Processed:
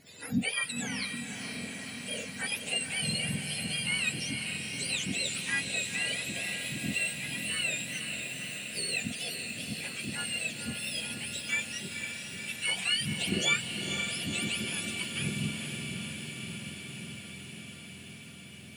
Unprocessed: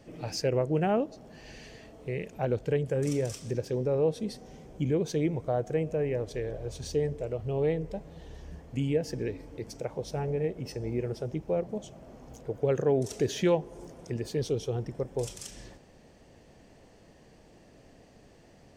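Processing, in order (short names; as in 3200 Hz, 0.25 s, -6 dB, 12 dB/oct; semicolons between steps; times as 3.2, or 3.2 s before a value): spectrum mirrored in octaves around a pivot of 1100 Hz; 0.69–1.21 negative-ratio compressor -38 dBFS, ratio -1; diffused feedback echo 0.499 s, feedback 78%, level -6 dB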